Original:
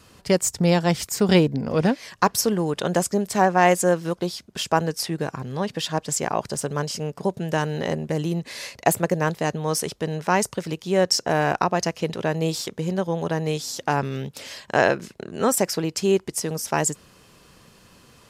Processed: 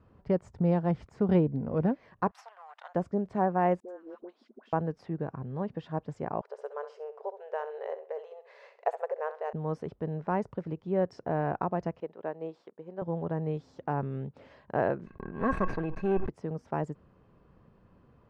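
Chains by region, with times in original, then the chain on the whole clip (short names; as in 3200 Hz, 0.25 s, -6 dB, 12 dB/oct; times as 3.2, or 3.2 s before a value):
2.31–2.95 half-wave gain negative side -12 dB + elliptic high-pass 730 Hz, stop band 60 dB + tilt +2.5 dB/oct
3.8–4.73 steep high-pass 220 Hz 96 dB/oct + compressor 4:1, threshold -34 dBFS + dispersion highs, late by 86 ms, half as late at 940 Hz
6.41–9.53 brick-wall FIR high-pass 400 Hz + flutter echo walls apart 11.4 m, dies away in 0.33 s
12–13.02 HPF 380 Hz + high shelf 4300 Hz -4.5 dB + upward expander, over -45 dBFS
15.06–16.29 minimum comb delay 0.47 ms + small resonant body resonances 1100/1600/2600 Hz, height 18 dB, ringing for 55 ms + sustainer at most 57 dB/s
whole clip: LPF 1100 Hz 12 dB/oct; low shelf 160 Hz +5.5 dB; gain -8.5 dB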